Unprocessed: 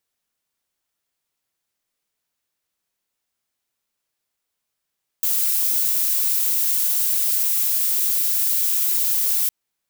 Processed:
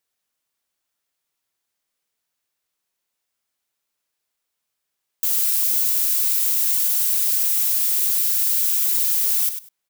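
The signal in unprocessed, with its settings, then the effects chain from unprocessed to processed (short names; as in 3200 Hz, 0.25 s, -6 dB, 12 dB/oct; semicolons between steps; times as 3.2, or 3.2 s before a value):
noise violet, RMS -20 dBFS 4.26 s
low shelf 290 Hz -4.5 dB; on a send: feedback echo 99 ms, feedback 15%, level -9 dB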